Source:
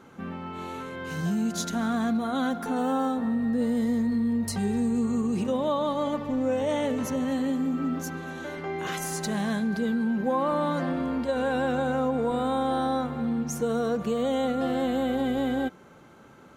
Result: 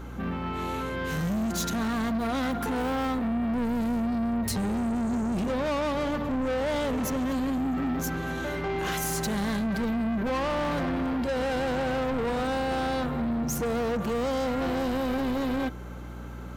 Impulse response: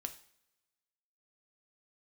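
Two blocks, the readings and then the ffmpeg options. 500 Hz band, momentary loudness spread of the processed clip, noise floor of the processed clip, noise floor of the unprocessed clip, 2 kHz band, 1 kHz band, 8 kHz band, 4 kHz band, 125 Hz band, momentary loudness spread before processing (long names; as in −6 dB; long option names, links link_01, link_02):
−1.5 dB, 4 LU, −38 dBFS, −51 dBFS, +2.0 dB, −1.0 dB, +1.5 dB, +1.5 dB, +2.0 dB, 7 LU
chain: -af "aexciter=amount=1.6:drive=7.2:freq=12000,asoftclip=type=tanh:threshold=-32.5dB,aeval=exprs='val(0)+0.00562*(sin(2*PI*60*n/s)+sin(2*PI*2*60*n/s)/2+sin(2*PI*3*60*n/s)/3+sin(2*PI*4*60*n/s)/4+sin(2*PI*5*60*n/s)/5)':channel_layout=same,volume=6.5dB"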